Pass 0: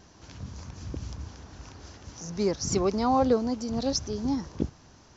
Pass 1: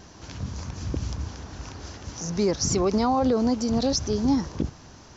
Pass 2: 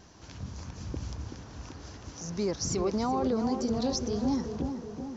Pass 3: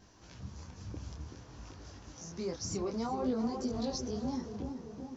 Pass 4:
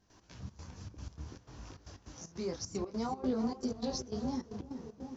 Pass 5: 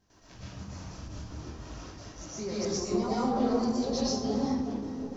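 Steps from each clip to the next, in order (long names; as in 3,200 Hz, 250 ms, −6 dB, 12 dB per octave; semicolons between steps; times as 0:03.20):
brickwall limiter −21.5 dBFS, peak gain reduction 9 dB; level +7 dB
tape delay 379 ms, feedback 72%, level −5 dB, low-pass 1,400 Hz; level −7 dB
micro pitch shift up and down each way 19 cents; level −2.5 dB
gate pattern ".x.xx.xxx" 153 BPM −12 dB
convolution reverb RT60 0.85 s, pre-delay 80 ms, DRR −8 dB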